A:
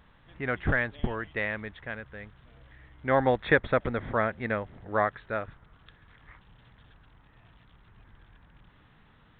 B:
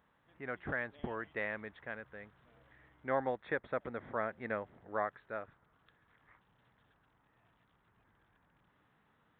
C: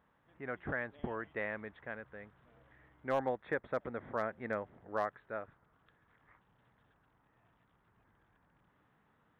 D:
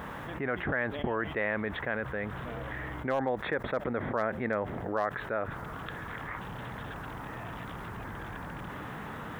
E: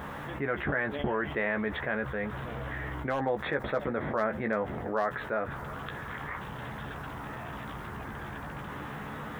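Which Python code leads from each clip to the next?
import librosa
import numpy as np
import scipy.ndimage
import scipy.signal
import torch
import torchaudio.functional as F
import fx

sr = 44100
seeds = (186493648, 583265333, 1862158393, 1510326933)

y1 = fx.highpass(x, sr, hz=300.0, slope=6)
y1 = fx.peak_eq(y1, sr, hz=3600.0, db=-7.5, octaves=1.7)
y1 = fx.rider(y1, sr, range_db=4, speed_s=0.5)
y1 = y1 * librosa.db_to_amplitude(-7.5)
y2 = fx.high_shelf(y1, sr, hz=3400.0, db=-10.0)
y2 = np.clip(y2, -10.0 ** (-23.5 / 20.0), 10.0 ** (-23.5 / 20.0))
y2 = y2 * librosa.db_to_amplitude(1.0)
y3 = fx.env_flatten(y2, sr, amount_pct=70)
y3 = y3 * librosa.db_to_amplitude(2.0)
y4 = fx.doubler(y3, sr, ms=14.0, db=-6)
y4 = y4 + 10.0 ** (-20.5 / 20.0) * np.pad(y4, (int(350 * sr / 1000.0), 0))[:len(y4)]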